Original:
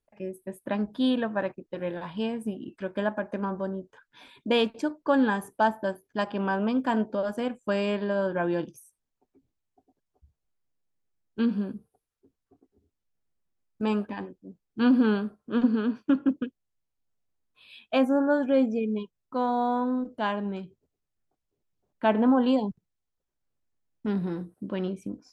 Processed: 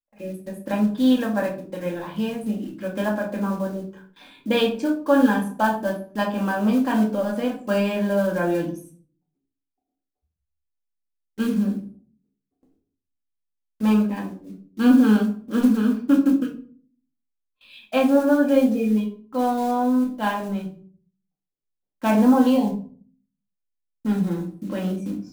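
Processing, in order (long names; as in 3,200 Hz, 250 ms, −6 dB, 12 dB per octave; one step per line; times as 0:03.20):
one scale factor per block 5 bits
noise gate with hold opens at −48 dBFS
rectangular room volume 370 cubic metres, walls furnished, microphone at 2.2 metres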